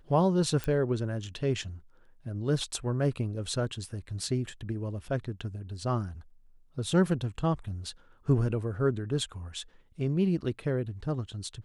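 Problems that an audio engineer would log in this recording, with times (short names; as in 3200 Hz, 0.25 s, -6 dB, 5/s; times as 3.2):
0.64 pop -18 dBFS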